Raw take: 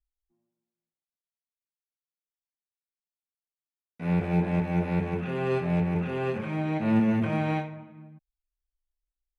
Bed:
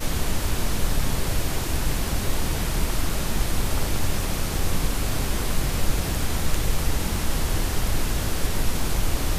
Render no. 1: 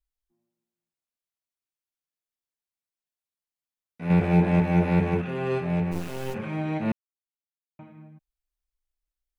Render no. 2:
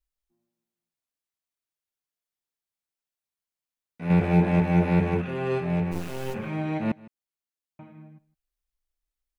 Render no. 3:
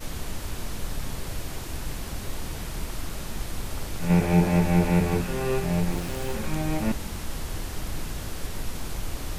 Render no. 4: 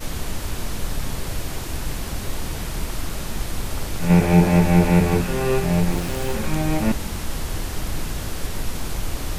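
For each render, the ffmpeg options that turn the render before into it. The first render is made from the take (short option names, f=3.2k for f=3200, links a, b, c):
-filter_complex "[0:a]asettb=1/sr,asplit=3[a][b][c];[a]atrim=end=4.104[d];[b]atrim=start=4.1:end=5.22,asetpts=PTS-STARTPTS,afade=t=in:d=0.004:c=qsin,afade=t=out:st=1.116:d=0.004:c=qsin,acontrast=34[e];[c]atrim=start=5.216[f];[d][e]acrossfade=d=0.004:c1=hsin:c2=qsin[g];[g][f]acrossfade=d=0.004:c1=qsin:c2=hsin,asplit=3[h][i][j];[h]afade=t=out:st=5.91:d=0.02[k];[i]acrusher=bits=4:dc=4:mix=0:aa=0.000001,afade=t=in:st=5.91:d=0.02,afade=t=out:st=6.33:d=0.02[l];[j]afade=t=in:st=6.33:d=0.02[m];[k][l][m]amix=inputs=3:normalize=0,asplit=3[n][o][p];[n]atrim=end=6.92,asetpts=PTS-STARTPTS,afade=t=out:st=6.916:d=0.004:c=hsin[q];[o]atrim=start=6.92:end=7.79,asetpts=PTS-STARTPTS,volume=0[r];[p]atrim=start=7.79,asetpts=PTS-STARTPTS,afade=t=in:d=0.004:c=hsin[s];[q][r][s]concat=n=3:v=0:a=1"
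-af "aecho=1:1:158:0.0841"
-filter_complex "[1:a]volume=-8.5dB[a];[0:a][a]amix=inputs=2:normalize=0"
-af "volume=5.5dB"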